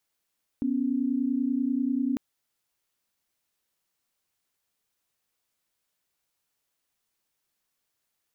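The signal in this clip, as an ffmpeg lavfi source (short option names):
-f lavfi -i "aevalsrc='0.0473*(sin(2*PI*246.94*t)+sin(2*PI*277.18*t))':d=1.55:s=44100"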